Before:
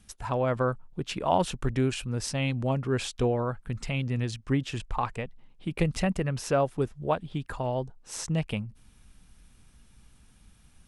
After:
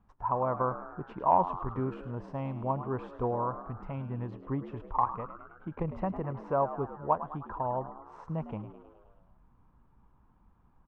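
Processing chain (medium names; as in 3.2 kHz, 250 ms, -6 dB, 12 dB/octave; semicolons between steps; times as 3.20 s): resonant low-pass 1 kHz, resonance Q 4.9; on a send: frequency-shifting echo 105 ms, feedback 60%, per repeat +76 Hz, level -13 dB; on the sum: transformer saturation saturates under 210 Hz; trim -7.5 dB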